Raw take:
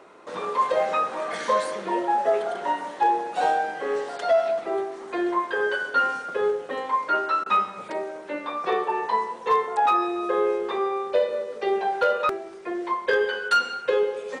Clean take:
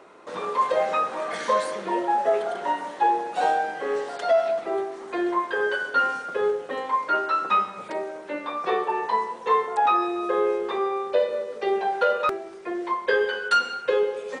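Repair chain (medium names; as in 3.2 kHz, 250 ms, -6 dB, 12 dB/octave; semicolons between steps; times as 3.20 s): clip repair -13 dBFS; interpolate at 7.44 s, 19 ms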